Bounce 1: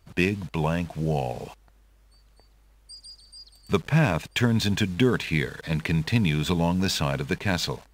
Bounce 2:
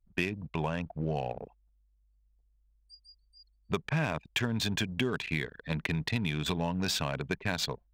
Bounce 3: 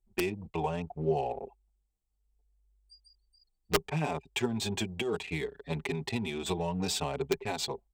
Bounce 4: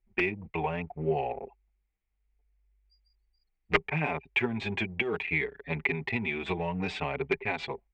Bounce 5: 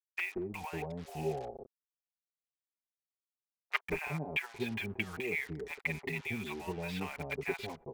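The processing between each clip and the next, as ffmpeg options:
-af "anlmdn=25.1,lowshelf=f=490:g=-5,acompressor=threshold=0.0398:ratio=3"
-filter_complex "[0:a]equalizer=f=125:t=o:w=0.33:g=-7,equalizer=f=400:t=o:w=0.33:g=12,equalizer=f=800:t=o:w=0.33:g=10,equalizer=f=1600:t=o:w=0.33:g=-8,equalizer=f=8000:t=o:w=0.33:g=9,aeval=exprs='(mod(4.73*val(0)+1,2)-1)/4.73':c=same,asplit=2[s0][s1];[s1]adelay=5.6,afreqshift=-0.65[s2];[s0][s2]amix=inputs=2:normalize=1"
-af "lowpass=f=2200:t=q:w=4"
-filter_complex "[0:a]acrusher=bits=6:mix=0:aa=0.5,acrossover=split=760[s0][s1];[s0]adelay=180[s2];[s2][s1]amix=inputs=2:normalize=0,volume=0.501"

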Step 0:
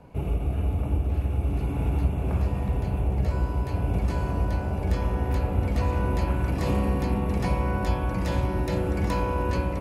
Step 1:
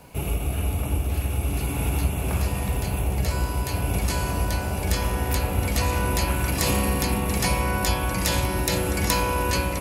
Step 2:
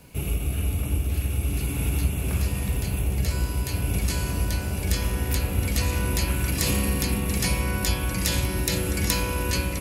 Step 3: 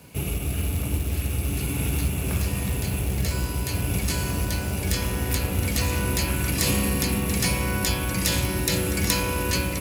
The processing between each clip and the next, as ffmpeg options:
-af "crystalizer=i=9:c=0"
-af "equalizer=f=820:w=0.98:g=-9.5"
-filter_complex "[0:a]asplit=2[s0][s1];[s1]asoftclip=type=hard:threshold=0.0841,volume=0.299[s2];[s0][s2]amix=inputs=2:normalize=0,highpass=72,acrusher=bits=4:mode=log:mix=0:aa=0.000001"

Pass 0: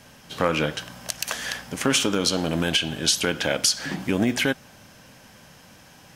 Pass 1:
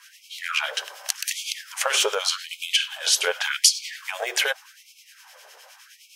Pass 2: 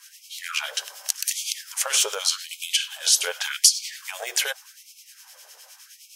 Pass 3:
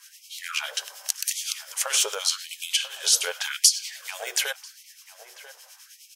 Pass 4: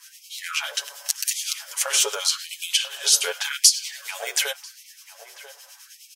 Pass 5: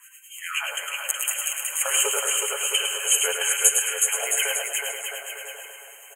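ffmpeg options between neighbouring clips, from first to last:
-filter_complex "[0:a]asubboost=boost=6:cutoff=110,acrossover=split=1600[s0][s1];[s0]aeval=exprs='val(0)*(1-0.7/2+0.7/2*cos(2*PI*9.7*n/s))':c=same[s2];[s1]aeval=exprs='val(0)*(1-0.7/2-0.7/2*cos(2*PI*9.7*n/s))':c=same[s3];[s2][s3]amix=inputs=2:normalize=0,afftfilt=real='re*gte(b*sr/1024,350*pow(2200/350,0.5+0.5*sin(2*PI*0.86*pts/sr)))':imag='im*gte(b*sr/1024,350*pow(2200/350,0.5+0.5*sin(2*PI*0.86*pts/sr)))':win_size=1024:overlap=0.75,volume=2"
-filter_complex "[0:a]bass=f=250:g=-14,treble=f=4000:g=11,asplit=2[s0][s1];[s1]alimiter=limit=0.596:level=0:latency=1:release=121,volume=0.794[s2];[s0][s2]amix=inputs=2:normalize=0,volume=0.316"
-filter_complex "[0:a]asplit=2[s0][s1];[s1]adelay=991.3,volume=0.224,highshelf=f=4000:g=-22.3[s2];[s0][s2]amix=inputs=2:normalize=0,volume=0.841"
-af "aecho=1:1:7.1:0.65,volume=1.12"
-filter_complex "[0:a]asplit=2[s0][s1];[s1]aecho=0:1:107|214|321|428|535:0.501|0.21|0.0884|0.0371|0.0156[s2];[s0][s2]amix=inputs=2:normalize=0,afftfilt=real='re*(1-between(b*sr/4096,3200,6400))':imag='im*(1-between(b*sr/4096,3200,6400))':win_size=4096:overlap=0.75,asplit=2[s3][s4];[s4]aecho=0:1:370|666|902.8|1092|1244:0.631|0.398|0.251|0.158|0.1[s5];[s3][s5]amix=inputs=2:normalize=0"

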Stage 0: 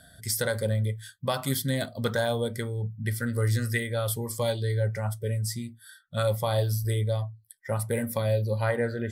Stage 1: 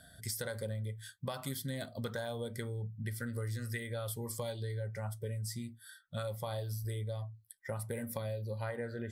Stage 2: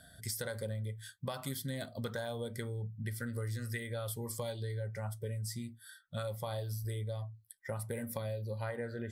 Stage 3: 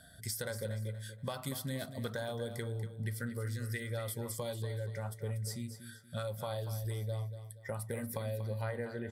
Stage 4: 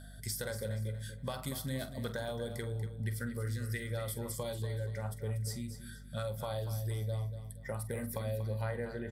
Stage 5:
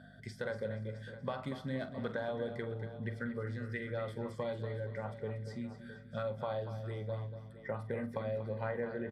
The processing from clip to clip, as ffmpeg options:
-af "acompressor=threshold=0.0251:ratio=5,volume=0.631"
-af anull
-af "aecho=1:1:238|476|714|952:0.282|0.093|0.0307|0.0101"
-filter_complex "[0:a]aeval=exprs='val(0)+0.00355*(sin(2*PI*50*n/s)+sin(2*PI*2*50*n/s)/2+sin(2*PI*3*50*n/s)/3+sin(2*PI*4*50*n/s)/4+sin(2*PI*5*50*n/s)/5)':c=same,asplit=2[s0][s1];[s1]adelay=46,volume=0.224[s2];[s0][s2]amix=inputs=2:normalize=0"
-af "highpass=160,lowpass=2200,aecho=1:1:664|1328:0.178|0.0409,volume=1.26"

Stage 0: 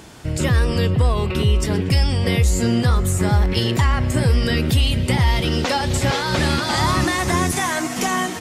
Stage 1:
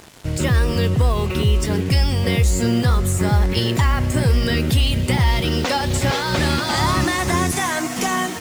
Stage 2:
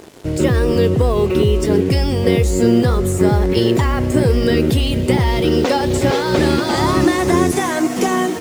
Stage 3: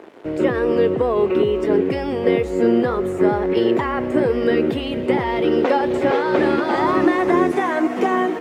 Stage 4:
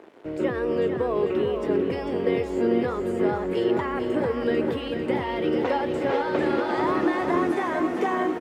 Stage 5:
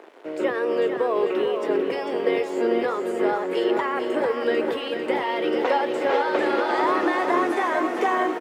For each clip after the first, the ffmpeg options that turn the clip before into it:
-af "acrusher=bits=5:mix=0:aa=0.5"
-af "equalizer=f=380:w=0.9:g=12.5,volume=0.841"
-filter_complex "[0:a]acrossover=split=230 2700:gain=0.112 1 0.0891[s0][s1][s2];[s0][s1][s2]amix=inputs=3:normalize=0"
-af "aecho=1:1:446|892|1338|1784|2230|2676|3122:0.447|0.246|0.135|0.0743|0.0409|0.0225|0.0124,volume=0.447"
-af "highpass=420,volume=1.68"

